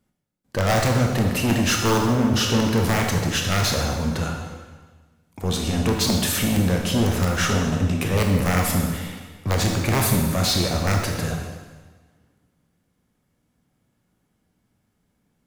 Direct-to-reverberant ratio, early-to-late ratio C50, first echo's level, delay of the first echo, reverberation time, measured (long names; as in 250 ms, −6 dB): 1.0 dB, 3.0 dB, no echo audible, no echo audible, 1.4 s